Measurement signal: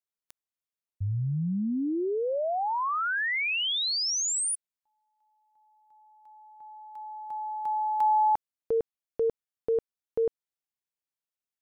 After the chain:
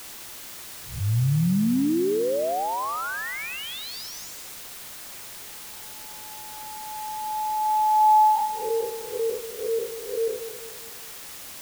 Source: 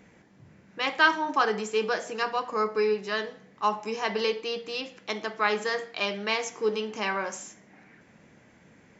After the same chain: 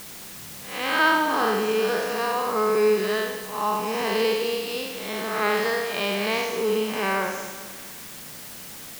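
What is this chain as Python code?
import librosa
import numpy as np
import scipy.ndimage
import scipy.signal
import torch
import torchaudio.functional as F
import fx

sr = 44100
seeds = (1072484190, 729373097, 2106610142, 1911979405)

p1 = fx.spec_blur(x, sr, span_ms=199.0)
p2 = scipy.signal.sosfilt(scipy.signal.butter(4, 5800.0, 'lowpass', fs=sr, output='sos'), p1)
p3 = fx.quant_dither(p2, sr, seeds[0], bits=8, dither='triangular')
p4 = p3 + fx.echo_feedback(p3, sr, ms=206, feedback_pct=45, wet_db=-11.5, dry=0)
y = F.gain(torch.from_numpy(p4), 7.5).numpy()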